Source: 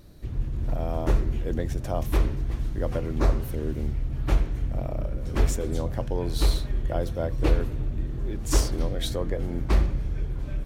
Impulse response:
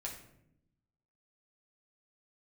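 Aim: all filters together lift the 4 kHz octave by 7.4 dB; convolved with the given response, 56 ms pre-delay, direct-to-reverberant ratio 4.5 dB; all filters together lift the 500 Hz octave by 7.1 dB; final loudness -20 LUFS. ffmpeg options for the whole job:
-filter_complex "[0:a]equalizer=f=500:t=o:g=8.5,equalizer=f=4000:t=o:g=8.5,asplit=2[s0][s1];[1:a]atrim=start_sample=2205,adelay=56[s2];[s1][s2]afir=irnorm=-1:irlink=0,volume=0.668[s3];[s0][s3]amix=inputs=2:normalize=0,volume=1.68"

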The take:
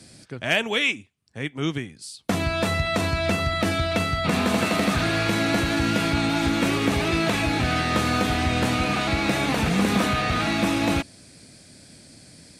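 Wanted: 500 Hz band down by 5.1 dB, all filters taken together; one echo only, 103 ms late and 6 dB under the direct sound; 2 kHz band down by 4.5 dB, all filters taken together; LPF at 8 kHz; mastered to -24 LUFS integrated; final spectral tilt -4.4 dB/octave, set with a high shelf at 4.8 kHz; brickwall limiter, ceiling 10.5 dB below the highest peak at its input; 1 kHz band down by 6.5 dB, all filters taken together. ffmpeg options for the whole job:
-af "lowpass=8000,equalizer=f=500:t=o:g=-4.5,equalizer=f=1000:t=o:g=-6.5,equalizer=f=2000:t=o:g=-5,highshelf=f=4800:g=5.5,alimiter=limit=0.0841:level=0:latency=1,aecho=1:1:103:0.501,volume=1.78"

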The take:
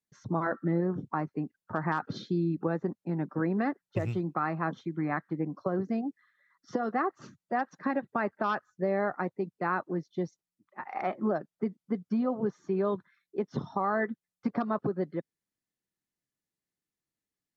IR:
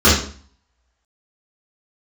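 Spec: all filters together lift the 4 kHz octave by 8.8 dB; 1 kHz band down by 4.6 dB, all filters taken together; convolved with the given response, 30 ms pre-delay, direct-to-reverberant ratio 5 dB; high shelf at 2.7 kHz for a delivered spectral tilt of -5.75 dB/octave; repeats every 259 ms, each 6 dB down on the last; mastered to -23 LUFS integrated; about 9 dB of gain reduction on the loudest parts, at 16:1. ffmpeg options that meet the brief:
-filter_complex "[0:a]equalizer=f=1000:t=o:g=-8,highshelf=f=2700:g=8.5,equalizer=f=4000:t=o:g=4,acompressor=threshold=0.0178:ratio=16,aecho=1:1:259|518|777|1036|1295|1554:0.501|0.251|0.125|0.0626|0.0313|0.0157,asplit=2[s0][s1];[1:a]atrim=start_sample=2205,adelay=30[s2];[s1][s2]afir=irnorm=-1:irlink=0,volume=0.0266[s3];[s0][s3]amix=inputs=2:normalize=0,volume=5.31"

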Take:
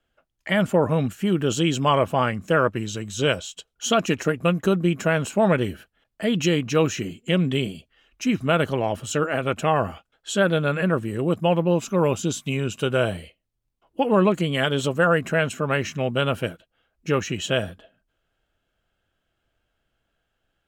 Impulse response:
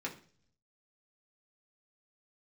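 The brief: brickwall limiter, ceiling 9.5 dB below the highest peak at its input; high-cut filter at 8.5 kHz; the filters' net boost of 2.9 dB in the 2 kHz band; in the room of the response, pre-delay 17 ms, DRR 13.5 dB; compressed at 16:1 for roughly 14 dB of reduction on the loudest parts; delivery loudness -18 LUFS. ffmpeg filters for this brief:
-filter_complex "[0:a]lowpass=8500,equalizer=f=2000:t=o:g=4,acompressor=threshold=0.0398:ratio=16,alimiter=level_in=1.06:limit=0.0631:level=0:latency=1,volume=0.944,asplit=2[s0][s1];[1:a]atrim=start_sample=2205,adelay=17[s2];[s1][s2]afir=irnorm=-1:irlink=0,volume=0.168[s3];[s0][s3]amix=inputs=2:normalize=0,volume=7.5"

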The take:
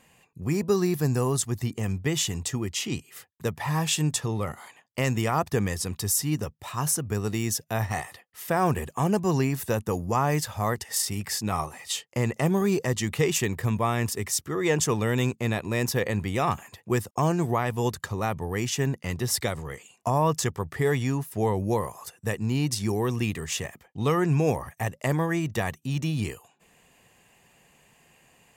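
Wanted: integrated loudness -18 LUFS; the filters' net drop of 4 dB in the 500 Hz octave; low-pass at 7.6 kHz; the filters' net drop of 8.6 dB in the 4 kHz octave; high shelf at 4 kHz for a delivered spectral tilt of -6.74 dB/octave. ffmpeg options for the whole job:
-af "lowpass=7600,equalizer=f=500:t=o:g=-5,highshelf=f=4000:g=-9,equalizer=f=4000:t=o:g=-5.5,volume=3.76"

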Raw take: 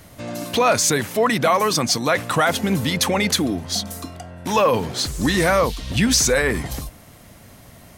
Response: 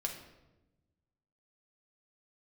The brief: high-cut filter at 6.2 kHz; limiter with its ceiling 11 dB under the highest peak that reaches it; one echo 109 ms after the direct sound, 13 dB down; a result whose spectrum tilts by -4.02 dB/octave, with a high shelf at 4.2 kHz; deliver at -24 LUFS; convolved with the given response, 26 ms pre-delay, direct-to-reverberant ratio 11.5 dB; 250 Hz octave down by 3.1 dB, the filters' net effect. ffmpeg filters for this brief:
-filter_complex "[0:a]lowpass=6200,equalizer=f=250:t=o:g=-4,highshelf=f=4200:g=-4.5,alimiter=limit=0.126:level=0:latency=1,aecho=1:1:109:0.224,asplit=2[s0][s1];[1:a]atrim=start_sample=2205,adelay=26[s2];[s1][s2]afir=irnorm=-1:irlink=0,volume=0.224[s3];[s0][s3]amix=inputs=2:normalize=0,volume=1.33"

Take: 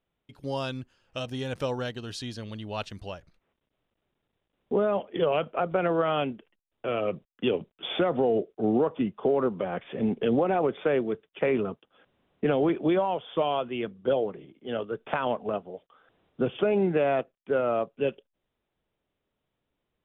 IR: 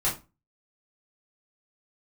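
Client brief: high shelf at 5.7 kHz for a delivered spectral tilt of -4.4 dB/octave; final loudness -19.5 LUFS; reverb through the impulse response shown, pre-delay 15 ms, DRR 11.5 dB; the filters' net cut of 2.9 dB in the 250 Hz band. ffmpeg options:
-filter_complex "[0:a]equalizer=f=250:t=o:g=-4,highshelf=f=5700:g=4,asplit=2[s0][s1];[1:a]atrim=start_sample=2205,adelay=15[s2];[s1][s2]afir=irnorm=-1:irlink=0,volume=0.0891[s3];[s0][s3]amix=inputs=2:normalize=0,volume=2.99"

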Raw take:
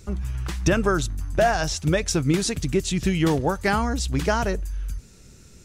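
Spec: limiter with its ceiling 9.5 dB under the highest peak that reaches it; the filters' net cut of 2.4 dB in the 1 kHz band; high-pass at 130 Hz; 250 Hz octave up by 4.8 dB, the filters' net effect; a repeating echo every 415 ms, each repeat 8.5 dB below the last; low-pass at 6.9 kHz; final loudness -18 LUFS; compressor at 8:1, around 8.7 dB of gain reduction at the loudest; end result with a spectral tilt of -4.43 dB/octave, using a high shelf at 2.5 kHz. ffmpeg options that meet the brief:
-af "highpass=130,lowpass=6900,equalizer=f=250:t=o:g=8,equalizer=f=1000:t=o:g=-5.5,highshelf=f=2500:g=7,acompressor=threshold=0.0891:ratio=8,alimiter=limit=0.112:level=0:latency=1,aecho=1:1:415|830|1245|1660:0.376|0.143|0.0543|0.0206,volume=3.35"

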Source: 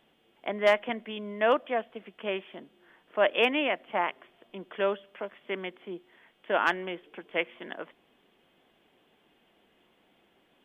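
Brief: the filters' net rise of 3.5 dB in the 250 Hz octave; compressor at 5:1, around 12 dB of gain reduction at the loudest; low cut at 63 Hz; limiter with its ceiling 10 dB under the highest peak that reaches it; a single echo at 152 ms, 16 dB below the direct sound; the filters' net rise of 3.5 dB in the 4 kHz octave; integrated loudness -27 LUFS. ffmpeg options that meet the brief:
-af "highpass=63,equalizer=f=250:t=o:g=4.5,equalizer=f=4000:t=o:g=5.5,acompressor=threshold=0.0282:ratio=5,alimiter=level_in=1.33:limit=0.0631:level=0:latency=1,volume=0.75,aecho=1:1:152:0.158,volume=3.98"

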